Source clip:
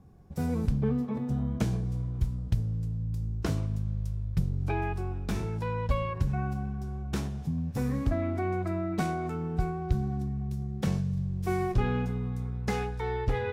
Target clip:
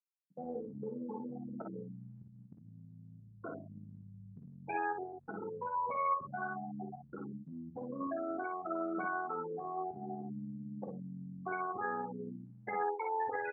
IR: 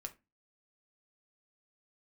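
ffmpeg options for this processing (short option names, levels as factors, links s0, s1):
-filter_complex "[0:a]asplit=2[s0][s1];[s1]highpass=f=720:p=1,volume=7.94,asoftclip=type=tanh:threshold=0.188[s2];[s0][s2]amix=inputs=2:normalize=0,lowpass=f=1300:p=1,volume=0.501,bandreject=f=60:t=h:w=6,bandreject=f=120:t=h:w=6,bandreject=f=180:t=h:w=6,bandreject=f=240:t=h:w=6,bandreject=f=300:t=h:w=6,bandreject=f=360:t=h:w=6,bandreject=f=420:t=h:w=6,afftfilt=real='re*gte(hypot(re,im),0.1)':imag='im*gte(hypot(re,im),0.1)':win_size=1024:overlap=0.75,adynamicequalizer=threshold=0.00708:dfrequency=1700:dqfactor=0.75:tfrequency=1700:tqfactor=0.75:attack=5:release=100:ratio=0.375:range=2.5:mode=boostabove:tftype=bell,acompressor=threshold=0.0355:ratio=16,alimiter=level_in=2.11:limit=0.0631:level=0:latency=1:release=175,volume=0.473,tremolo=f=87:d=0.462,highpass=190,lowpass=3100,aemphasis=mode=production:type=riaa,aecho=1:1:21|48|58:0.2|0.447|0.562,volume=1.58"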